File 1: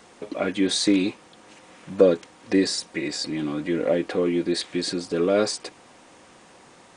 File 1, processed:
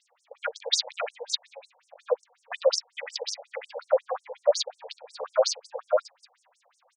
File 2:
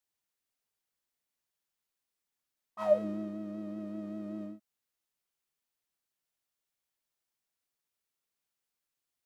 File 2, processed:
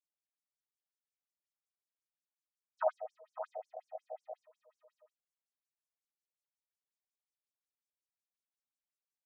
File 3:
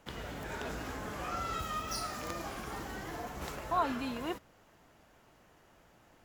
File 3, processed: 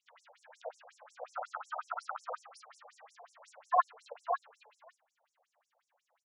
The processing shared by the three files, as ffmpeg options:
-af "aecho=1:1:581:0.631,afwtdn=0.0282,afftfilt=real='re*between(b*sr/1024,610*pow(7800/610,0.5+0.5*sin(2*PI*5.5*pts/sr))/1.41,610*pow(7800/610,0.5+0.5*sin(2*PI*5.5*pts/sr))*1.41)':imag='im*between(b*sr/1024,610*pow(7800/610,0.5+0.5*sin(2*PI*5.5*pts/sr))/1.41,610*pow(7800/610,0.5+0.5*sin(2*PI*5.5*pts/sr))*1.41)':win_size=1024:overlap=0.75,volume=2.37"

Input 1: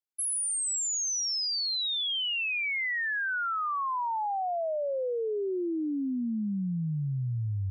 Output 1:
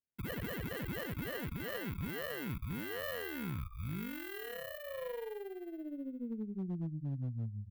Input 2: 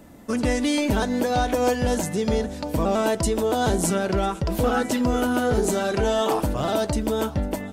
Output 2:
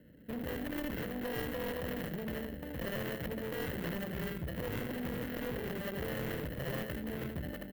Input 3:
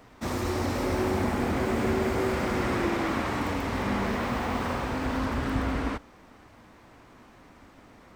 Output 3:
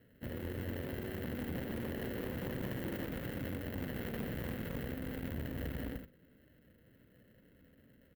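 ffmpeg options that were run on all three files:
-filter_complex "[0:a]bandreject=f=50:t=h:w=6,bandreject=f=100:t=h:w=6,bandreject=f=150:t=h:w=6,bandreject=f=200:t=h:w=6,bandreject=f=250:t=h:w=6,aecho=1:1:78:0.447,acrossover=split=630[s0][s1];[s0]alimiter=limit=0.075:level=0:latency=1:release=83[s2];[s1]acrusher=samples=37:mix=1:aa=0.000001[s3];[s2][s3]amix=inputs=2:normalize=0,firequalizer=gain_entry='entry(160,0);entry(360,-9);entry(510,-2);entry(790,-19);entry(1100,-4);entry(1900,1);entry(5800,-18);entry(10000,-4);entry(15000,8)':delay=0.05:min_phase=1,aeval=exprs='0.211*(cos(1*acos(clip(val(0)/0.211,-1,1)))-cos(1*PI/2))+0.00335*(cos(3*acos(clip(val(0)/0.211,-1,1)))-cos(3*PI/2))+0.106*(cos(4*acos(clip(val(0)/0.211,-1,1)))-cos(4*PI/2))+0.0596*(cos(6*acos(clip(val(0)/0.211,-1,1)))-cos(6*PI/2))+0.0266*(cos(8*acos(clip(val(0)/0.211,-1,1)))-cos(8*PI/2))':c=same,highpass=f=88:p=1,volume=22.4,asoftclip=hard,volume=0.0447,equalizer=f=3500:t=o:w=0.77:g=2,aeval=exprs='0.0531*(cos(1*acos(clip(val(0)/0.0531,-1,1)))-cos(1*PI/2))+0.000473*(cos(4*acos(clip(val(0)/0.0531,-1,1)))-cos(4*PI/2))':c=same,volume=0.501"

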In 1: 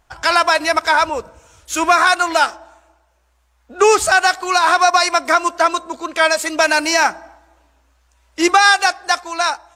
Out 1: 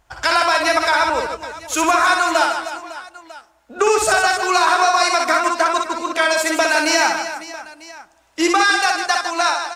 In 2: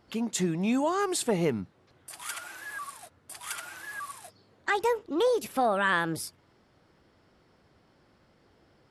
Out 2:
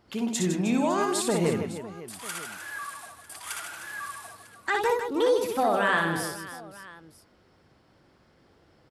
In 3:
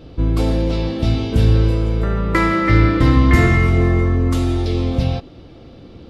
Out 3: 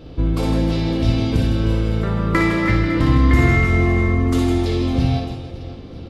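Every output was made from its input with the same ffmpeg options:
-filter_complex "[0:a]acompressor=threshold=0.224:ratio=6,asplit=2[s0][s1];[s1]aecho=0:1:60|156|309.6|555.4|948.6:0.631|0.398|0.251|0.158|0.1[s2];[s0][s2]amix=inputs=2:normalize=0"

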